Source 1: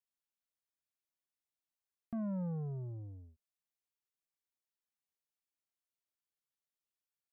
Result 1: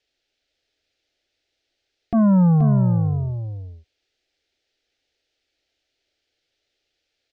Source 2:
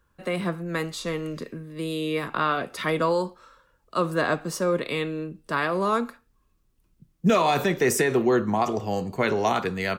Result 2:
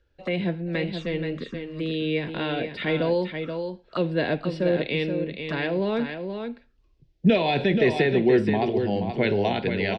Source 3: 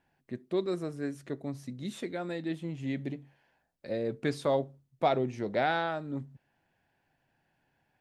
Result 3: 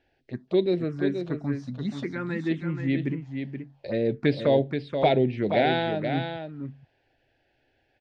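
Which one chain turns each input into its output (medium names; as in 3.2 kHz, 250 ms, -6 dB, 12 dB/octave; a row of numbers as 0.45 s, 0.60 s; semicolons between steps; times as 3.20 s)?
low-pass 4.9 kHz 24 dB/octave; touch-sensitive phaser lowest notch 180 Hz, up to 1.2 kHz, full sweep at -28.5 dBFS; on a send: delay 478 ms -7 dB; on the sum: peak normalisation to -9 dBFS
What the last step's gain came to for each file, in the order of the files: +25.0 dB, +2.5 dB, +9.0 dB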